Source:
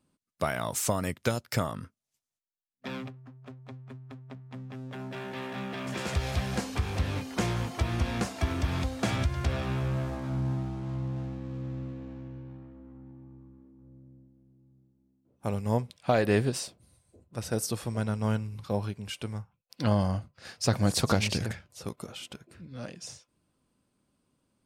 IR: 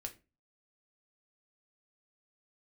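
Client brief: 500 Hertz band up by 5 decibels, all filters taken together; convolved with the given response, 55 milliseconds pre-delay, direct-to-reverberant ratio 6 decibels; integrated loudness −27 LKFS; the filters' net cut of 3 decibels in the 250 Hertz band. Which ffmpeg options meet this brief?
-filter_complex "[0:a]equalizer=frequency=250:width_type=o:gain=-6,equalizer=frequency=500:width_type=o:gain=7.5,asplit=2[link_01][link_02];[1:a]atrim=start_sample=2205,adelay=55[link_03];[link_02][link_03]afir=irnorm=-1:irlink=0,volume=-3dB[link_04];[link_01][link_04]amix=inputs=2:normalize=0,volume=2.5dB"

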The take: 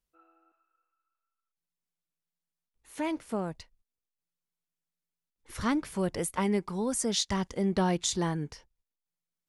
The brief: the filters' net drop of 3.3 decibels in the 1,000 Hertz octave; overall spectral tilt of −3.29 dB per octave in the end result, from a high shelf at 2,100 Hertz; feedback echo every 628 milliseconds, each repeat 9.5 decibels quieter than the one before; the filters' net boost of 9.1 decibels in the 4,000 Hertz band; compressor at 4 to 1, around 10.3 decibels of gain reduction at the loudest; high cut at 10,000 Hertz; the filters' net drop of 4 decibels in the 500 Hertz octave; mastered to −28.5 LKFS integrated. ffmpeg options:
ffmpeg -i in.wav -af "lowpass=10000,equalizer=frequency=500:width_type=o:gain=-5,equalizer=frequency=1000:width_type=o:gain=-4,highshelf=frequency=2100:gain=6.5,equalizer=frequency=4000:width_type=o:gain=5,acompressor=threshold=-29dB:ratio=4,aecho=1:1:628|1256|1884|2512:0.335|0.111|0.0365|0.012,volume=5dB" out.wav

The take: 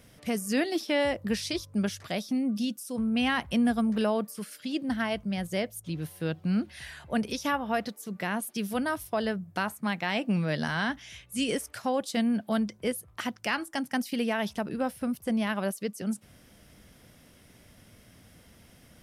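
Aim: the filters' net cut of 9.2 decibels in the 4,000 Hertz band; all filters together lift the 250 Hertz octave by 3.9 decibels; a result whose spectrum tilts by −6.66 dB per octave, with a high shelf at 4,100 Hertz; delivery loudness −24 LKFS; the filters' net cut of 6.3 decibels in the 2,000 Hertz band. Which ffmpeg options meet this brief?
ffmpeg -i in.wav -af "equalizer=frequency=250:width_type=o:gain=4.5,equalizer=frequency=2000:width_type=o:gain=-5.5,equalizer=frequency=4000:width_type=o:gain=-8,highshelf=frequency=4100:gain=-5,volume=4.5dB" out.wav

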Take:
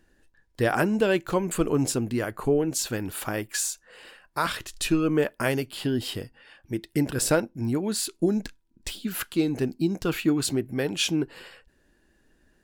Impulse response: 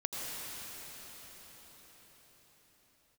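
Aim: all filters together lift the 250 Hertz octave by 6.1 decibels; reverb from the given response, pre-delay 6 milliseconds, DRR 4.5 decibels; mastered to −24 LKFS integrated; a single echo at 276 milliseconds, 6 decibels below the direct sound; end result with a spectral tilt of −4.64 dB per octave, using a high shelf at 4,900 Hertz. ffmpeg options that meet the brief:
-filter_complex "[0:a]equalizer=frequency=250:width_type=o:gain=8,highshelf=frequency=4900:gain=8,aecho=1:1:276:0.501,asplit=2[link_01][link_02];[1:a]atrim=start_sample=2205,adelay=6[link_03];[link_02][link_03]afir=irnorm=-1:irlink=0,volume=-9dB[link_04];[link_01][link_04]amix=inputs=2:normalize=0,volume=-4dB"

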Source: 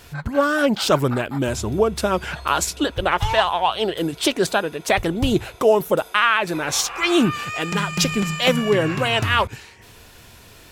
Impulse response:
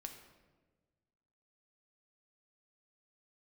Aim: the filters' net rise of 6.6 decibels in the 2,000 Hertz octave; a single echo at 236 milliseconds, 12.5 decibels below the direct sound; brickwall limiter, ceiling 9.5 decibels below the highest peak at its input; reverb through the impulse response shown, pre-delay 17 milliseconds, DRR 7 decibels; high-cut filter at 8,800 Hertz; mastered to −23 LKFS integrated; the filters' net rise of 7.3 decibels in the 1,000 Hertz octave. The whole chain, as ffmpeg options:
-filter_complex "[0:a]lowpass=8800,equalizer=frequency=1000:width_type=o:gain=7.5,equalizer=frequency=2000:width_type=o:gain=6,alimiter=limit=-6dB:level=0:latency=1,aecho=1:1:236:0.237,asplit=2[link_01][link_02];[1:a]atrim=start_sample=2205,adelay=17[link_03];[link_02][link_03]afir=irnorm=-1:irlink=0,volume=-3dB[link_04];[link_01][link_04]amix=inputs=2:normalize=0,volume=-5.5dB"

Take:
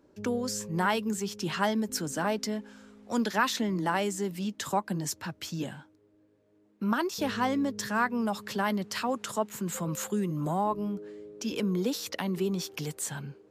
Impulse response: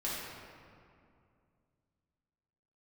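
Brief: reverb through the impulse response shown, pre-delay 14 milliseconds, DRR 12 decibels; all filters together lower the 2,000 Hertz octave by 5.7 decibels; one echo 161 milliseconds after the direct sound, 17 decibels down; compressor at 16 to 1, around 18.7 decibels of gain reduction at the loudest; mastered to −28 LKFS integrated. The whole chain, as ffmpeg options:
-filter_complex "[0:a]equalizer=frequency=2000:width_type=o:gain=-8,acompressor=threshold=-43dB:ratio=16,aecho=1:1:161:0.141,asplit=2[link_01][link_02];[1:a]atrim=start_sample=2205,adelay=14[link_03];[link_02][link_03]afir=irnorm=-1:irlink=0,volume=-17dB[link_04];[link_01][link_04]amix=inputs=2:normalize=0,volume=19dB"

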